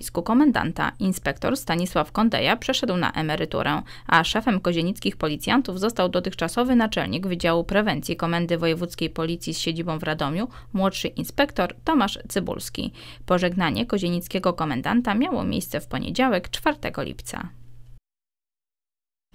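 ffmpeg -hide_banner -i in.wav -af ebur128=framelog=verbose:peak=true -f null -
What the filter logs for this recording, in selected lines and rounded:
Integrated loudness:
  I:         -23.8 LUFS
  Threshold: -34.0 LUFS
Loudness range:
  LRA:         3.5 LU
  Threshold: -44.1 LUFS
  LRA low:   -25.9 LUFS
  LRA high:  -22.5 LUFS
True peak:
  Peak:       -3.3 dBFS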